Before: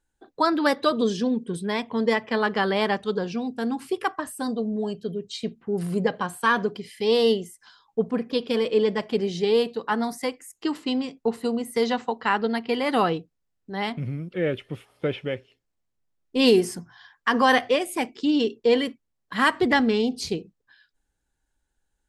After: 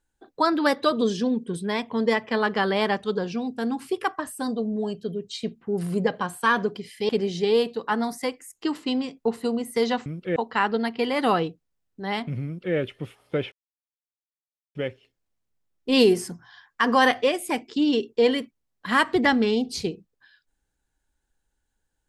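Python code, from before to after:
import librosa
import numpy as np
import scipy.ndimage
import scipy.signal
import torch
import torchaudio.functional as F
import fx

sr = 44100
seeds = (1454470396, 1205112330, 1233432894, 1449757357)

y = fx.edit(x, sr, fx.cut(start_s=7.09, length_s=2.0),
    fx.duplicate(start_s=14.15, length_s=0.3, to_s=12.06),
    fx.insert_silence(at_s=15.22, length_s=1.23), tone=tone)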